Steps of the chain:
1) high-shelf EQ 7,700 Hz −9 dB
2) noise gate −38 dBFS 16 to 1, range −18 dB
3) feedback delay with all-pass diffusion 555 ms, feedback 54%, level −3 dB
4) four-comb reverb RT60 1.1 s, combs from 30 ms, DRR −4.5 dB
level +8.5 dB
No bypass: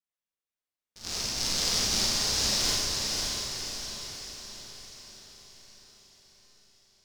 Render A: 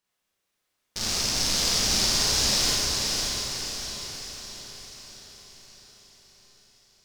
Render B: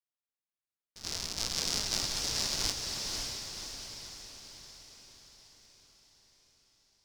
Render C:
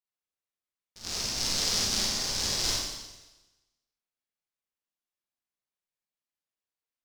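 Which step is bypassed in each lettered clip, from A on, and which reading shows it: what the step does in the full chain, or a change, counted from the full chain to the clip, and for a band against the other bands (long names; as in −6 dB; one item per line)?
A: 2, change in integrated loudness +3.5 LU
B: 4, echo-to-direct ratio 7.5 dB to −1.5 dB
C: 3, echo-to-direct ratio 7.5 dB to 4.5 dB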